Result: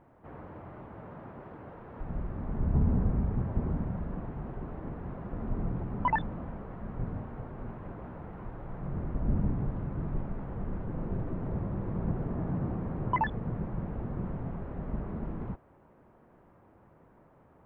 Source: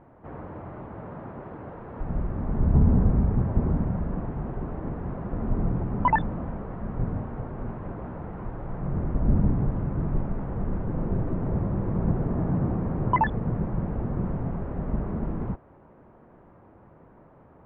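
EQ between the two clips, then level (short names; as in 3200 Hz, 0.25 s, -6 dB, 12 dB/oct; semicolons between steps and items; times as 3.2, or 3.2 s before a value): high shelf 2900 Hz +9.5 dB; -7.0 dB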